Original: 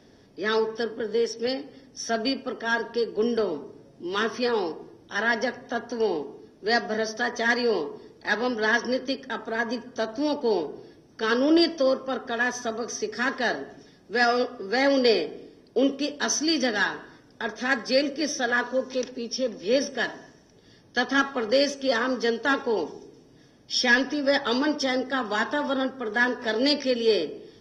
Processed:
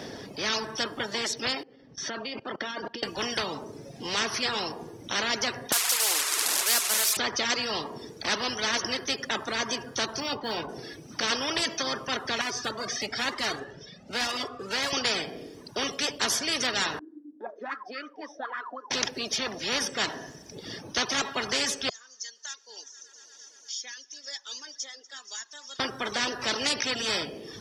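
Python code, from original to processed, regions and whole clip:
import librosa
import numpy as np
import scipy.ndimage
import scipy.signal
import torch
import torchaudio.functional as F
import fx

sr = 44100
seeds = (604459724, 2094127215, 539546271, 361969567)

y = fx.chain(x, sr, fx.level_steps(step_db=20),
    fx.air_absorb(metres=140.0), at=(1.63, 3.03))
y = fx.chain(y, sr, fx.delta_mod(bps=64000, step_db=-28.5),
    fx.highpass(hz=1300.0, slope=12),
    fx.high_shelf_res(hz=4100.0, db=8.0, q=1.5), at=(5.72, 7.17))
y = fx.chain(y, sr, fx.lowpass(hz=1500.0, slope=6),
    fx.quant_float(bits=8),
    fx.doubler(ms=18.0, db=-10.5), at=(10.2, 10.69))
y = fx.chain(y, sr, fx.block_float(bits=5),
    fx.lowpass(hz=4800.0, slope=12),
    fx.comb_cascade(direction='rising', hz=1.0), at=(12.41, 14.93))
y = fx.chain(y, sr, fx.auto_wah(base_hz=280.0, top_hz=1300.0, q=17.0, full_db=-20.5, direction='up'),
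    fx.peak_eq(hz=300.0, db=13.0, octaves=0.24), at=(16.99, 18.91))
y = fx.chain(y, sr, fx.bandpass_q(hz=6600.0, q=17.0),
    fx.echo_heads(ms=118, heads='first and second', feedback_pct=69, wet_db=-23.0),
    fx.band_squash(depth_pct=70), at=(21.89, 25.8))
y = fx.dereverb_blind(y, sr, rt60_s=0.87)
y = fx.highpass(y, sr, hz=190.0, slope=6)
y = fx.spectral_comp(y, sr, ratio=4.0)
y = y * librosa.db_to_amplitude(1.5)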